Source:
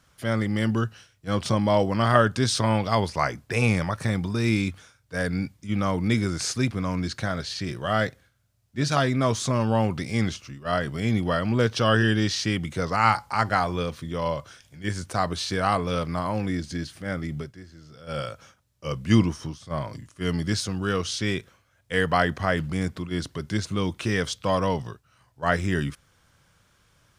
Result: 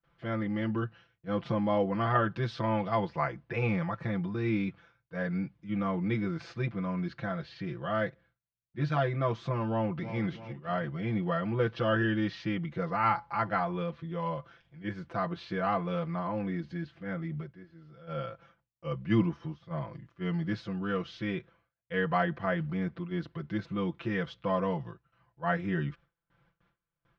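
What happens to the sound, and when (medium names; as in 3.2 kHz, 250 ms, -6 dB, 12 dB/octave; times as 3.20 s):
9.68–10.19 s: echo throw 330 ms, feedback 50%, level -11.5 dB
whole clip: Bessel low-pass 2.2 kHz, order 4; gate with hold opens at -53 dBFS; comb 5.9 ms, depth 94%; trim -8.5 dB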